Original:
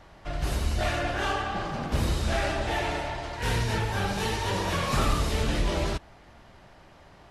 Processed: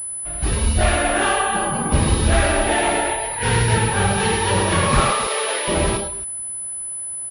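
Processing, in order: 5–5.68 HPF 410 Hz 24 dB/oct; loudspeakers at several distances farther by 36 m -6 dB, 92 m -10 dB; spectral noise reduction 11 dB; pulse-width modulation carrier 10000 Hz; gain +9 dB

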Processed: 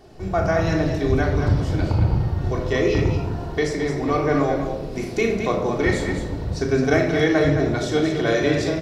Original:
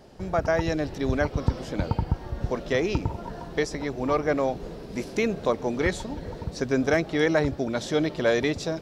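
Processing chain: on a send: loudspeakers at several distances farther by 12 m -9 dB, 75 m -7 dB; on the sum: shoebox room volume 2500 m³, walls furnished, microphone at 3.4 m

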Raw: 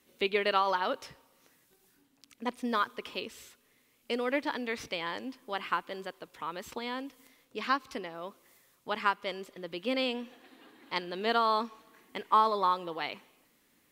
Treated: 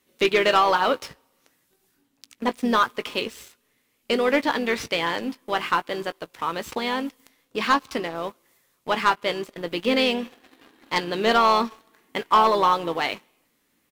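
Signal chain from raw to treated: harmoniser -3 st -13 dB; doubler 18 ms -13 dB; sample leveller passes 2; gain +3 dB

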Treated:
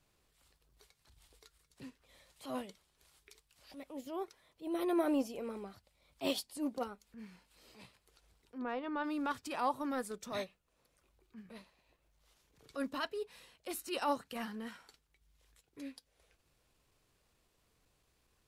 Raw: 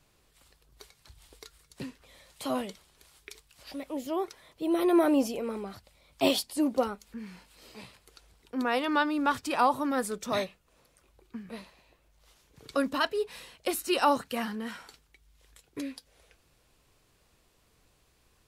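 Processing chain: 8.58–9.04 tape spacing loss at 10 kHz 34 dB; transient shaper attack -9 dB, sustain -5 dB; gain -7 dB

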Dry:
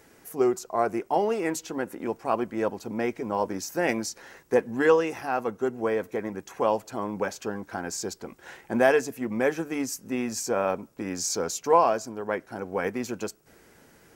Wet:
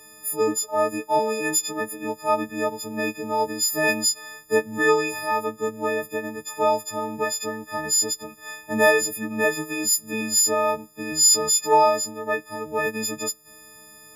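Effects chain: frequency quantiser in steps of 6 st

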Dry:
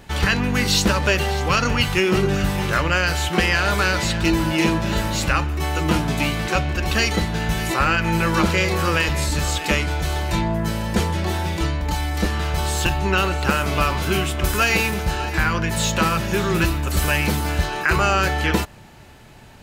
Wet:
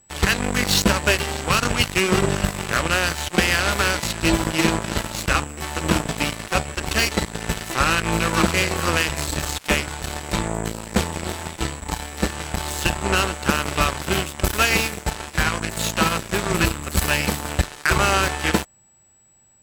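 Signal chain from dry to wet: whine 7800 Hz -35 dBFS; added harmonics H 5 -21 dB, 7 -13 dB, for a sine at -5.5 dBFS

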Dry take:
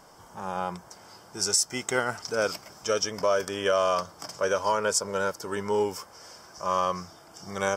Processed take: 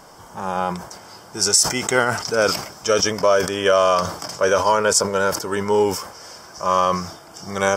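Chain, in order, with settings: sustainer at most 89 dB/s; gain +8 dB

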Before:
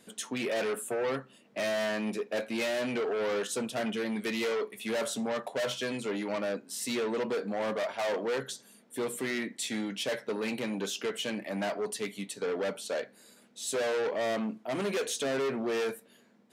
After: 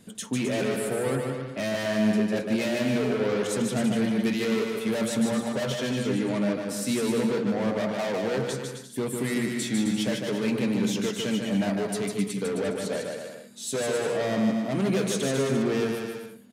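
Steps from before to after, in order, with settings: tone controls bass +15 dB, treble +2 dB; on a send: bouncing-ball echo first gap 0.15 s, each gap 0.75×, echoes 5

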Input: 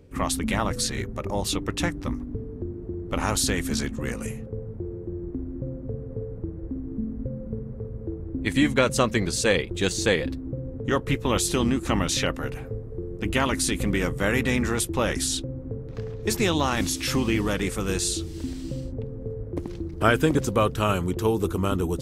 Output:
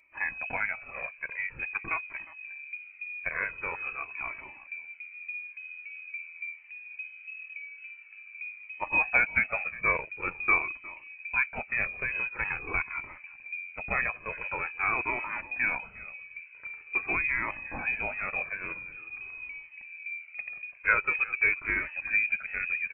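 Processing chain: HPF 290 Hz 24 dB/oct; echo 0.344 s -19 dB; inverted band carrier 2900 Hz; speed mistake 25 fps video run at 24 fps; cascading flanger falling 0.46 Hz

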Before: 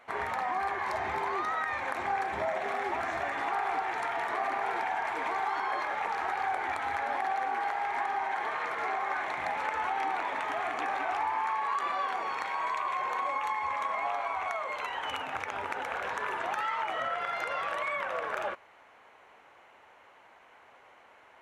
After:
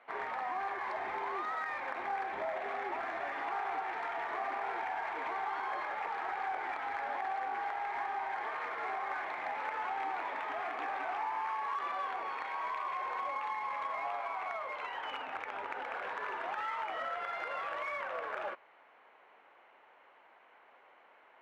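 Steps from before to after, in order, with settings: three-band isolator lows -15 dB, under 220 Hz, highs -23 dB, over 4000 Hz; in parallel at -10 dB: hard clip -34.5 dBFS, distortion -8 dB; on the sum: gain -6.5 dB

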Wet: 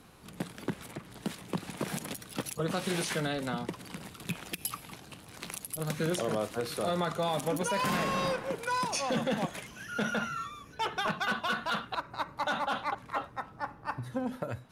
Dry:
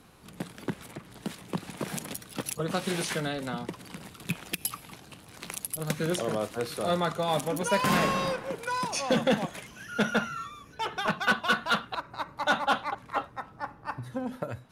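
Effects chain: limiter -21 dBFS, peak gain reduction 8.5 dB

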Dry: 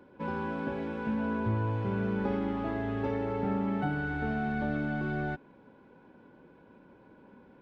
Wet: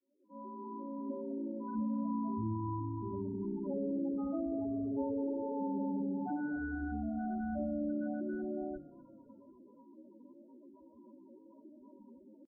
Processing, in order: opening faded in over 0.90 s; LPF 1100 Hz 12 dB/oct; bell 130 Hz -4.5 dB 0.93 oct; notches 50/100/150/200/250/300/350/400/450 Hz; comb 3.2 ms, depth 57%; in parallel at 0 dB: compressor, threshold -45 dBFS, peak gain reduction 16.5 dB; on the sum: tempo 0.61×; loudest bins only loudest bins 8; frequency-shifting echo 0.249 s, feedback 48%, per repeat -31 Hz, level -20 dB; on a send at -23 dB: reverb RT60 0.50 s, pre-delay 56 ms; on the sum: gain -4.5 dB

